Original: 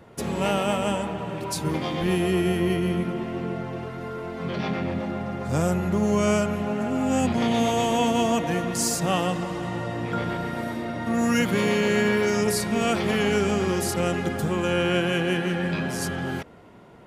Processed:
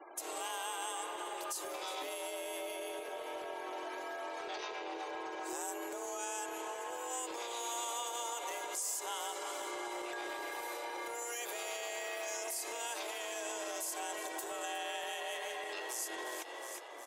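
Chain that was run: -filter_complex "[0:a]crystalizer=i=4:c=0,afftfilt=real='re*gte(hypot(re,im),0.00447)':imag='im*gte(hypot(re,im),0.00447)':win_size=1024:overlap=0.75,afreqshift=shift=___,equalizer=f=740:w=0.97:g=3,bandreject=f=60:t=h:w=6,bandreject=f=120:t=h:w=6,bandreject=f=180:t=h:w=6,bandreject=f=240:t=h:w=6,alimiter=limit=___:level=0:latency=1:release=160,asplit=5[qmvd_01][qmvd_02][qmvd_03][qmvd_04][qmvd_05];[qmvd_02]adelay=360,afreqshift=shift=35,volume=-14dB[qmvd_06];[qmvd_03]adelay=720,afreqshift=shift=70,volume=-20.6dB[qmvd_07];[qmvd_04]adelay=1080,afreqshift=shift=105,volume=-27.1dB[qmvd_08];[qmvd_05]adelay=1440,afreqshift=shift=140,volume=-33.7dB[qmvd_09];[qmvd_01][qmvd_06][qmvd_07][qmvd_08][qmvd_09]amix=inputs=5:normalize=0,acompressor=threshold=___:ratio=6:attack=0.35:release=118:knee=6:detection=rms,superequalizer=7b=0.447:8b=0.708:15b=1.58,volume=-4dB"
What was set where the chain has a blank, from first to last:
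240, -12.5dB, -30dB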